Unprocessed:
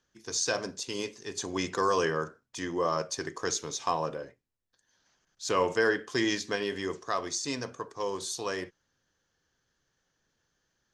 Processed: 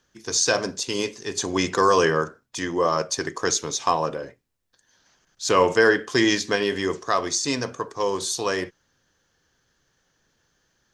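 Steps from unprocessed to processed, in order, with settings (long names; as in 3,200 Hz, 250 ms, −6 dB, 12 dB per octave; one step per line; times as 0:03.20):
0:02.21–0:04.23: harmonic and percussive parts rebalanced harmonic −3 dB
level +8.5 dB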